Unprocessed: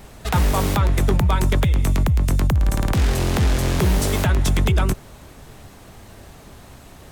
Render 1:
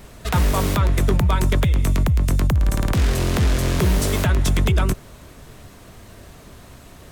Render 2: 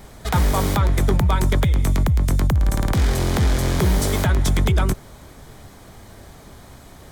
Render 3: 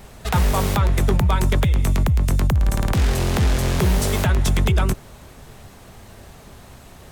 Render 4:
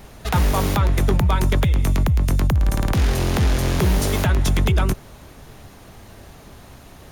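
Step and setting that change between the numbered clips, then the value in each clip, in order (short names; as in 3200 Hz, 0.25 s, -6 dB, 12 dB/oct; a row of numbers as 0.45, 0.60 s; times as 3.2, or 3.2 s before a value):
notch, frequency: 820, 2700, 300, 7900 Hz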